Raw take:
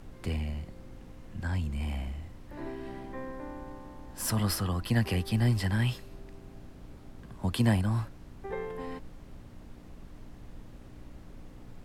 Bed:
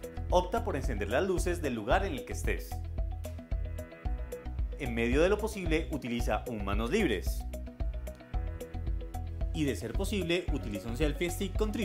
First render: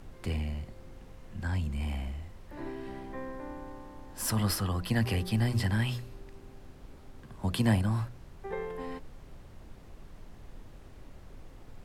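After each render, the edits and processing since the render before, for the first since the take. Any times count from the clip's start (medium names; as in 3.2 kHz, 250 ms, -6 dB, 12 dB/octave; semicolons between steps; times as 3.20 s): de-hum 60 Hz, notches 11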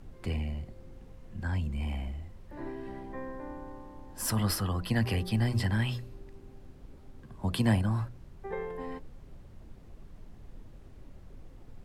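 noise reduction 6 dB, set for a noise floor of -51 dBFS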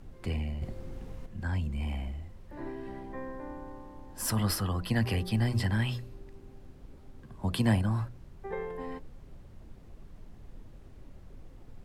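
0.62–1.26 s: gain +7.5 dB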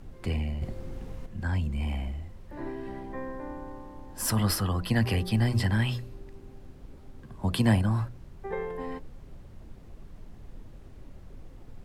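trim +3 dB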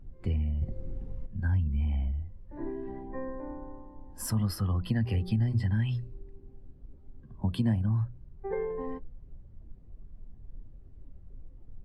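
compression 4:1, threshold -29 dBFS, peak gain reduction 10.5 dB; spectral contrast expander 1.5:1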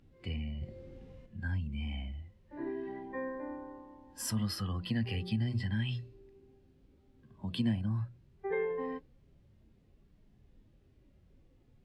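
frequency weighting D; harmonic-percussive split percussive -9 dB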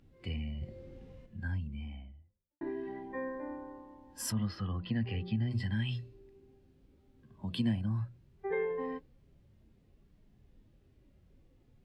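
1.24–2.61 s: studio fade out; 4.32–5.51 s: distance through air 240 m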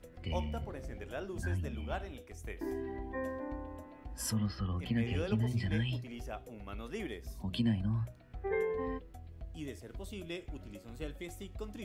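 add bed -12 dB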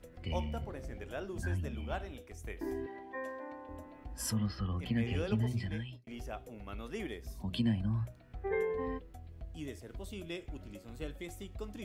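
2.86–3.69 s: frequency weighting A; 5.46–6.07 s: fade out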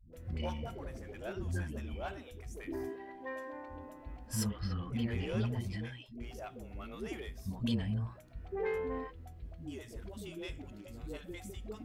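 single-diode clipper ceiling -29.5 dBFS; phase dispersion highs, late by 132 ms, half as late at 320 Hz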